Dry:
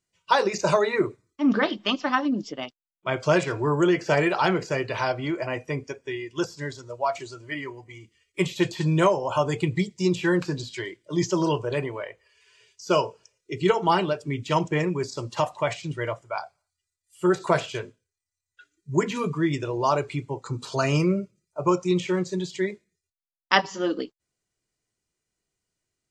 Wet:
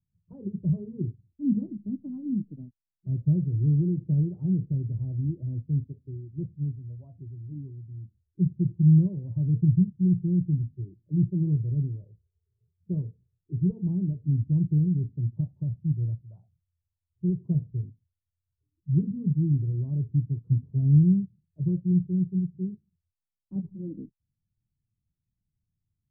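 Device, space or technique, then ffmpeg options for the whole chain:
the neighbour's flat through the wall: -af "lowpass=frequency=190:width=0.5412,lowpass=frequency=190:width=1.3066,equalizer=frequency=95:width_type=o:width=0.77:gain=4.5,volume=6.5dB"

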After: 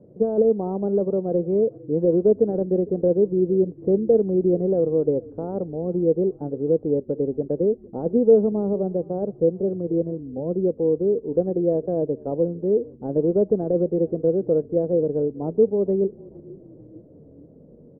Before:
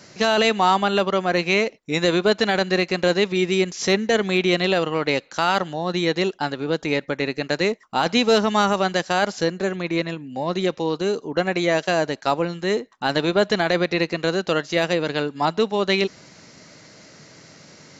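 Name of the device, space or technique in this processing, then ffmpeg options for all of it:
under water: -filter_complex "[0:a]lowpass=frequency=490:width=0.5412,lowpass=frequency=490:width=1.3066,equalizer=frequency=480:width_type=o:width=0.39:gain=8,asettb=1/sr,asplit=3[link_01][link_02][link_03];[link_01]atrim=end=8.524[link_04];[link_02]atrim=start=8.52:end=9.68,asetpts=PTS-STARTPTS,afade=type=in:duration=0.004:curve=qsin,afade=type=out:start_time=1.156:duration=0.004:curve=qsin,lowpass=1300[link_05];[link_03]atrim=start=9.676[link_06];[link_04][link_05]acrossfade=duration=0.004:curve1=hsin:curve2=qsin[link_07];[link_07][link_06]acrossfade=duration=0.004:curve1=qsin:curve2=hsin,asplit=5[link_08][link_09][link_10][link_11][link_12];[link_09]adelay=454,afreqshift=-37,volume=-22.5dB[link_13];[link_10]adelay=908,afreqshift=-74,volume=-27.1dB[link_14];[link_11]adelay=1362,afreqshift=-111,volume=-31.7dB[link_15];[link_12]adelay=1816,afreqshift=-148,volume=-36.2dB[link_16];[link_08][link_13][link_14][link_15][link_16]amix=inputs=5:normalize=0"

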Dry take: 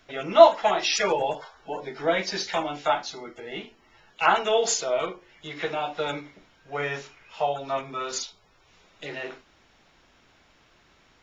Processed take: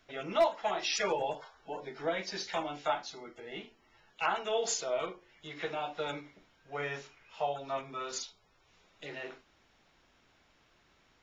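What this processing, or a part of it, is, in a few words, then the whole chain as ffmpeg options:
clipper into limiter: -af "asoftclip=type=hard:threshold=-6.5dB,alimiter=limit=-12dB:level=0:latency=1:release=487,volume=-7.5dB"

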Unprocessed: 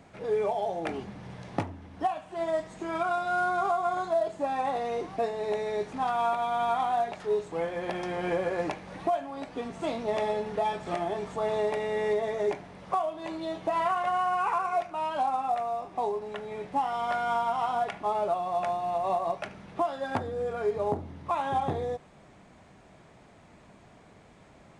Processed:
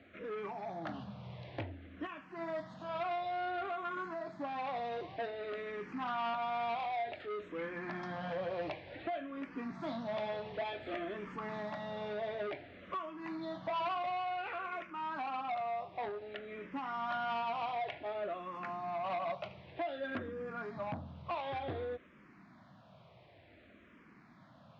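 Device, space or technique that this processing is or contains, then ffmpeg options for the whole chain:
barber-pole phaser into a guitar amplifier: -filter_complex "[0:a]asplit=2[link_01][link_02];[link_02]afreqshift=-0.55[link_03];[link_01][link_03]amix=inputs=2:normalize=1,asoftclip=type=tanh:threshold=-29.5dB,highpass=90,equalizer=frequency=170:width_type=q:width=4:gain=-3,equalizer=frequency=430:width_type=q:width=4:gain=-8,equalizer=frequency=830:width_type=q:width=4:gain=-7,lowpass=frequency=4200:width=0.5412,lowpass=frequency=4200:width=1.3066"

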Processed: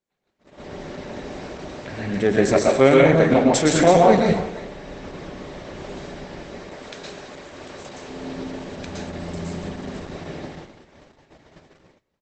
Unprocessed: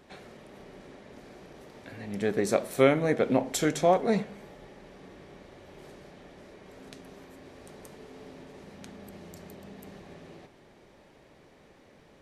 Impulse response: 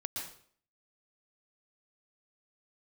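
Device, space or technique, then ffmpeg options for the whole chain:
speakerphone in a meeting room: -filter_complex "[0:a]asplit=3[link_01][link_02][link_03];[link_01]afade=type=out:start_time=6.6:duration=0.02[link_04];[link_02]lowshelf=frequency=380:gain=-8.5,afade=type=in:start_time=6.6:duration=0.02,afade=type=out:start_time=8.06:duration=0.02[link_05];[link_03]afade=type=in:start_time=8.06:duration=0.02[link_06];[link_04][link_05][link_06]amix=inputs=3:normalize=0[link_07];[1:a]atrim=start_sample=2205[link_08];[link_07][link_08]afir=irnorm=-1:irlink=0,asplit=2[link_09][link_10];[link_10]adelay=330,highpass=300,lowpass=3400,asoftclip=type=hard:threshold=-20dB,volume=-15dB[link_11];[link_09][link_11]amix=inputs=2:normalize=0,dynaudnorm=framelen=170:gausssize=7:maxgain=13.5dB,agate=range=-32dB:threshold=-40dB:ratio=16:detection=peak,volume=1dB" -ar 48000 -c:a libopus -b:a 12k

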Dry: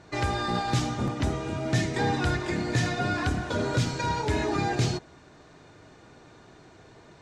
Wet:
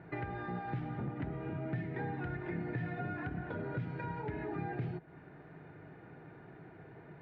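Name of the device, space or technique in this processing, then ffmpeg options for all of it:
bass amplifier: -af "acompressor=threshold=-36dB:ratio=5,highpass=60,equalizer=frequency=77:width_type=q:width=4:gain=-9,equalizer=frequency=160:width_type=q:width=4:gain=7,equalizer=frequency=230:width_type=q:width=4:gain=-4,equalizer=frequency=570:width_type=q:width=4:gain=-5,equalizer=frequency=1100:width_type=q:width=4:gain=-9,lowpass=frequency=2100:width=0.5412,lowpass=frequency=2100:width=1.3066"

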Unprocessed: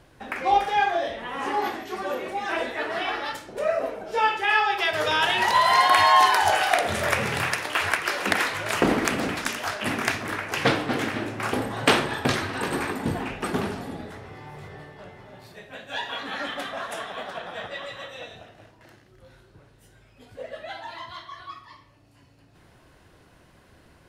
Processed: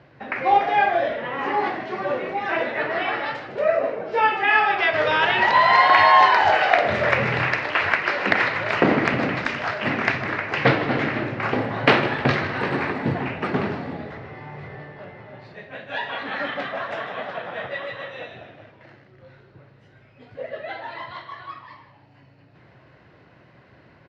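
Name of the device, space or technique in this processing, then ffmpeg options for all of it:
frequency-shifting delay pedal into a guitar cabinet: -filter_complex "[0:a]asplit=6[link_01][link_02][link_03][link_04][link_05][link_06];[link_02]adelay=155,afreqshift=-92,volume=-13dB[link_07];[link_03]adelay=310,afreqshift=-184,volume=-18.8dB[link_08];[link_04]adelay=465,afreqshift=-276,volume=-24.7dB[link_09];[link_05]adelay=620,afreqshift=-368,volume=-30.5dB[link_10];[link_06]adelay=775,afreqshift=-460,volume=-36.4dB[link_11];[link_01][link_07][link_08][link_09][link_10][link_11]amix=inputs=6:normalize=0,highpass=100,equalizer=frequency=130:width_type=q:width=4:gain=7,equalizer=frequency=580:width_type=q:width=4:gain=3,equalizer=frequency=2000:width_type=q:width=4:gain=4,equalizer=frequency=3400:width_type=q:width=4:gain=-6,lowpass=frequency=4100:width=0.5412,lowpass=frequency=4100:width=1.3066,volume=2.5dB"

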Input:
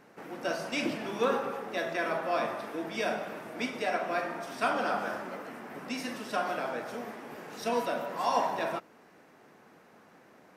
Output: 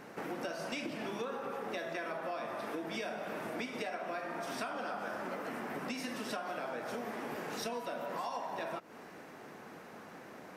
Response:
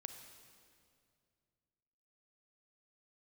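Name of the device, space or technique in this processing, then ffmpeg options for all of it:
serial compression, peaks first: -af "acompressor=threshold=-39dB:ratio=6,acompressor=threshold=-46dB:ratio=2,volume=7dB"

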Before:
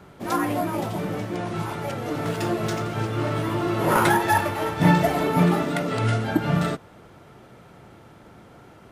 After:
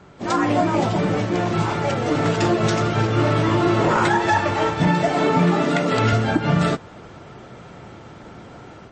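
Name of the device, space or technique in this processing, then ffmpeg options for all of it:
low-bitrate web radio: -filter_complex "[0:a]asettb=1/sr,asplit=3[link_01][link_02][link_03];[link_01]atrim=end=4.874[link_04];[link_02]atrim=start=4.87:end=6.13,asetpts=PTS-STARTPTS,afade=type=in:duration=0.004:curve=qsin,afade=type=out:start_time=1.256:duration=0.004:curve=qsin,highpass=130[link_05];[link_03]atrim=start=6.126[link_06];[link_04][link_05]acrossfade=duration=0.004:curve1=hsin:curve2=qsin[link_07];[link_07][link_06]acrossfade=duration=0.004:curve1=qsin:curve2=hsin,dynaudnorm=framelen=170:gausssize=3:maxgain=7dB,alimiter=limit=-9dB:level=0:latency=1:release=155,volume=1dB" -ar 24000 -c:a libmp3lame -b:a 32k

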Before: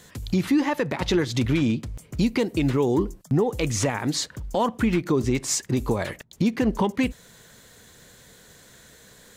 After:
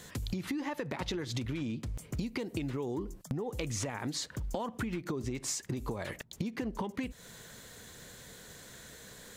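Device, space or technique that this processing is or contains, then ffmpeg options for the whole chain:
serial compression, leveller first: -af "acompressor=threshold=-23dB:ratio=3,acompressor=threshold=-33dB:ratio=6"

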